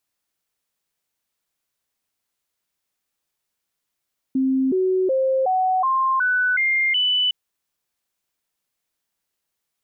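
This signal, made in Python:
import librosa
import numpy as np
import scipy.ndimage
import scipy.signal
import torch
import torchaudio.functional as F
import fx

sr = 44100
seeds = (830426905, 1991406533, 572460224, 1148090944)

y = fx.stepped_sweep(sr, from_hz=264.0, direction='up', per_octave=2, tones=8, dwell_s=0.37, gap_s=0.0, level_db=-16.5)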